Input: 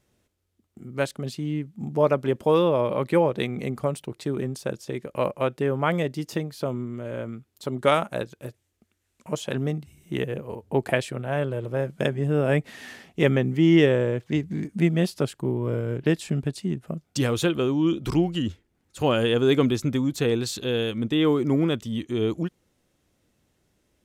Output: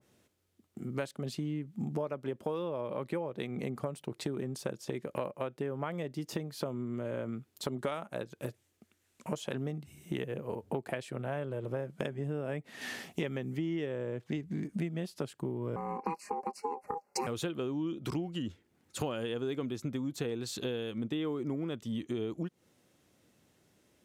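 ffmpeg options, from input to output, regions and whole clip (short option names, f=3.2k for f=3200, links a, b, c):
-filter_complex "[0:a]asettb=1/sr,asplit=3[a][b][c];[a]atrim=end=12.814[d];[b]atrim=start=12.81:end=13.59,asetpts=PTS-STARTPTS,afade=t=in:d=0.004:c=qsin,afade=t=out:st=0.776:d=0.004:c=qsin,acrossover=split=5500[e][f];[f]acompressor=threshold=-60dB:ratio=4:attack=1:release=60[g];[e][g]amix=inputs=2:normalize=0,highshelf=f=5k:g=12[h];[c]atrim=start=13.586[i];[d][h]acrossfade=d=0.004:c1=hsin:c2=qsin[j];[j][i]acrossfade=d=0.004:c1=qsin:c2=hsin,asettb=1/sr,asplit=3[k][l][m];[k]atrim=end=15.764[n];[l]atrim=start=15.76:end=17.27,asetpts=PTS-STARTPTS,afade=t=in:d=0.004:c=qsin,afade=t=out:st=1.506:d=0.004:c=qsin,aeval=exprs='val(0)*sin(2*PI*650*n/s)':c=same,asuperstop=centerf=3400:order=8:qfactor=2.2,aecho=1:1:4.9:0.51,atrim=end_sample=66591[o];[m]atrim=start=17.266[p];[n][o]acrossfade=d=0.004:c1=hsin:c2=qsin[q];[q][p]acrossfade=d=0.004:c1=qsin:c2=hsin,highpass=110,acompressor=threshold=-34dB:ratio=10,adynamicequalizer=threshold=0.00251:dfrequency=1600:dqfactor=0.7:tfrequency=1600:tqfactor=0.7:attack=5:release=100:ratio=0.375:range=1.5:mode=cutabove:tftype=highshelf,volume=2dB"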